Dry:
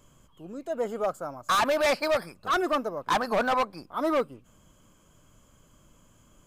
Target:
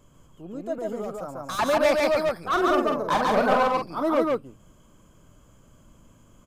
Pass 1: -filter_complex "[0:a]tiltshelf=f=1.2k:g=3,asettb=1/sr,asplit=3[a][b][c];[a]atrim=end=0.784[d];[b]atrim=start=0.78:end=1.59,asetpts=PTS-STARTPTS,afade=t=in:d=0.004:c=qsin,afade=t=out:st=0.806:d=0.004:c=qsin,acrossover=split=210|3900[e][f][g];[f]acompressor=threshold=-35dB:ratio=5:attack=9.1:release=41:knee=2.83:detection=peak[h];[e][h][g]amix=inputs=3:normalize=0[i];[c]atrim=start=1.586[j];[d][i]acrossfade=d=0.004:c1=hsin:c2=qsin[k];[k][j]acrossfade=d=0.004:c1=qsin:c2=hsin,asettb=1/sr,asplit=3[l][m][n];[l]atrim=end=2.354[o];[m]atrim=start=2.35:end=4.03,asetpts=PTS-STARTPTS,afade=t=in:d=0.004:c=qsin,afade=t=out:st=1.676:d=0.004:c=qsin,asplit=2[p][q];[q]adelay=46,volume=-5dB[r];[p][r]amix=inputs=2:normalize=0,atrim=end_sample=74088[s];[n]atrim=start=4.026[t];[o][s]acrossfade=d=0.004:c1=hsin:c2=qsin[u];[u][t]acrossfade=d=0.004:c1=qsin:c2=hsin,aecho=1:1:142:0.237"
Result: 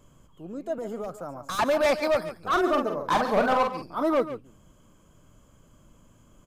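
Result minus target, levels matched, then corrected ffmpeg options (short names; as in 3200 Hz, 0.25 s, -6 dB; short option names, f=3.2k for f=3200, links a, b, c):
echo-to-direct -11 dB
-filter_complex "[0:a]tiltshelf=f=1.2k:g=3,asettb=1/sr,asplit=3[a][b][c];[a]atrim=end=0.784[d];[b]atrim=start=0.78:end=1.59,asetpts=PTS-STARTPTS,afade=t=in:d=0.004:c=qsin,afade=t=out:st=0.806:d=0.004:c=qsin,acrossover=split=210|3900[e][f][g];[f]acompressor=threshold=-35dB:ratio=5:attack=9.1:release=41:knee=2.83:detection=peak[h];[e][h][g]amix=inputs=3:normalize=0[i];[c]atrim=start=1.586[j];[d][i]acrossfade=d=0.004:c1=hsin:c2=qsin[k];[k][j]acrossfade=d=0.004:c1=qsin:c2=hsin,asettb=1/sr,asplit=3[l][m][n];[l]atrim=end=2.354[o];[m]atrim=start=2.35:end=4.03,asetpts=PTS-STARTPTS,afade=t=in:d=0.004:c=qsin,afade=t=out:st=1.676:d=0.004:c=qsin,asplit=2[p][q];[q]adelay=46,volume=-5dB[r];[p][r]amix=inputs=2:normalize=0,atrim=end_sample=74088[s];[n]atrim=start=4.026[t];[o][s]acrossfade=d=0.004:c1=hsin:c2=qsin[u];[u][t]acrossfade=d=0.004:c1=qsin:c2=hsin,aecho=1:1:142:0.841"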